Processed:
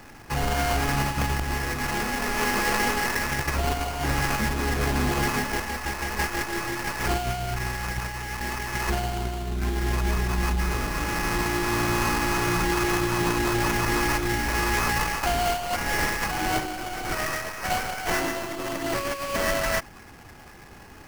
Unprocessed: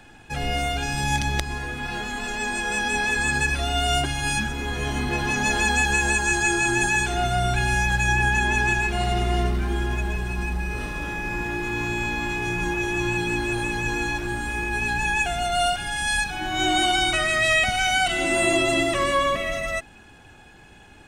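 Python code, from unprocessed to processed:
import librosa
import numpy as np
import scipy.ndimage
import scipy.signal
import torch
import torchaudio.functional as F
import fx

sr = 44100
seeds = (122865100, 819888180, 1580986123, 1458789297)

y = fx.tracing_dist(x, sr, depth_ms=0.22)
y = fx.over_compress(y, sr, threshold_db=-25.0, ratio=-0.5)
y = fx.sample_hold(y, sr, seeds[0], rate_hz=3700.0, jitter_pct=20)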